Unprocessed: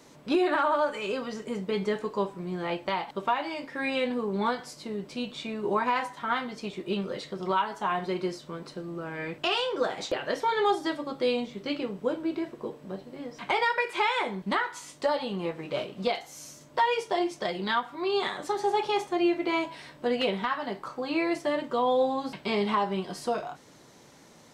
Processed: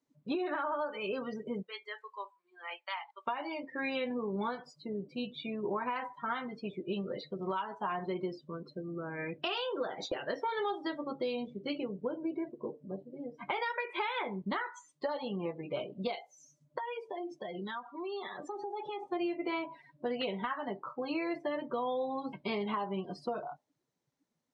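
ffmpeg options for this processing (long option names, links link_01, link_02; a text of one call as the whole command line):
ffmpeg -i in.wav -filter_complex "[0:a]asplit=3[link_01][link_02][link_03];[link_01]afade=type=out:start_time=1.61:duration=0.02[link_04];[link_02]highpass=1200,afade=type=in:start_time=1.61:duration=0.02,afade=type=out:start_time=3.26:duration=0.02[link_05];[link_03]afade=type=in:start_time=3.26:duration=0.02[link_06];[link_04][link_05][link_06]amix=inputs=3:normalize=0,asettb=1/sr,asplit=3[link_07][link_08][link_09];[link_07]atrim=end=16.784[link_10];[link_08]atrim=start=16.78:end=19.03,asetpts=PTS-STARTPTS,afade=type=in:duration=0.004:curve=qsin,afade=type=out:start_time=2.246:duration=0.004:curve=qsin,acompressor=threshold=-33dB:ratio=5:attack=3.2:release=140:knee=1:detection=peak[link_11];[link_09]atrim=start=19.026[link_12];[link_10][link_11]acrossfade=duration=0.004:curve1=hsin:curve2=qsin[link_13];[link_13][link_12]acrossfade=duration=0.004:curve1=qsin:curve2=hsin,afftdn=noise_reduction=30:noise_floor=-38,acompressor=threshold=-28dB:ratio=6,volume=-3dB" out.wav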